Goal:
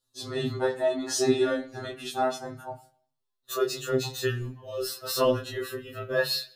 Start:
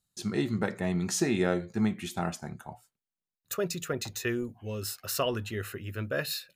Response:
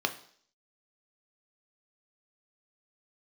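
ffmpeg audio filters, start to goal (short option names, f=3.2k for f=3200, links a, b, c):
-filter_complex "[0:a]flanger=delay=19:depth=4:speed=0.36,asplit=2[a][b];[1:a]atrim=start_sample=2205,highshelf=f=9.3k:g=-8.5[c];[b][c]afir=irnorm=-1:irlink=0,volume=-6dB[d];[a][d]amix=inputs=2:normalize=0,acontrast=24,lowshelf=f=180:g=5,afftfilt=real='re*2.45*eq(mod(b,6),0)':imag='im*2.45*eq(mod(b,6),0)':win_size=2048:overlap=0.75"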